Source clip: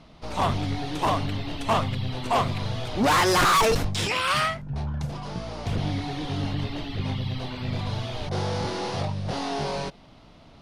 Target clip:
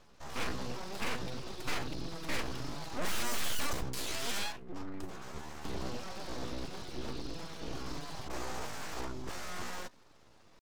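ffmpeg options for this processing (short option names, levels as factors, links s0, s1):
-af "asetrate=57191,aresample=44100,atempo=0.771105,aeval=exprs='abs(val(0))':c=same,volume=0.376"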